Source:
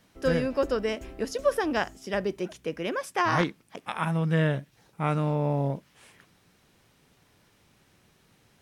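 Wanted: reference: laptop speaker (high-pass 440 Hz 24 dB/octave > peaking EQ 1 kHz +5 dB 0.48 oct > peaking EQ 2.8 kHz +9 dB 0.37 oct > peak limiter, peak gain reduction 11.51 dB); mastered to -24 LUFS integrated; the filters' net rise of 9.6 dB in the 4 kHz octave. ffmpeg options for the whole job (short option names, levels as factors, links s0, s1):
-af "highpass=f=440:w=0.5412,highpass=f=440:w=1.3066,equalizer=f=1000:t=o:w=0.48:g=5,equalizer=f=2800:t=o:w=0.37:g=9,equalizer=f=4000:t=o:g=6.5,volume=2.66,alimiter=limit=0.251:level=0:latency=1"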